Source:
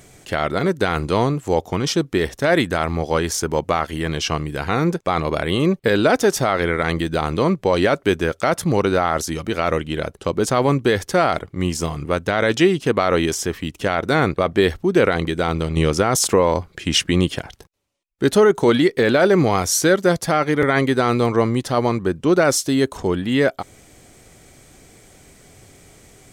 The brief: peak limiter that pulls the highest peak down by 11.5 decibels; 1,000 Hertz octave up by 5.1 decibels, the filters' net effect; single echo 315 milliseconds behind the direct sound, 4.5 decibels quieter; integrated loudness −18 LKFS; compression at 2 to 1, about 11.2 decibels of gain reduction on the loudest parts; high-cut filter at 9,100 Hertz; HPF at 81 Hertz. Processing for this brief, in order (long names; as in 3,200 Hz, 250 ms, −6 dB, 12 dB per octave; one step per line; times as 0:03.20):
high-pass filter 81 Hz
low-pass filter 9,100 Hz
parametric band 1,000 Hz +7 dB
downward compressor 2 to 1, threshold −30 dBFS
brickwall limiter −20 dBFS
single-tap delay 315 ms −4.5 dB
level +12.5 dB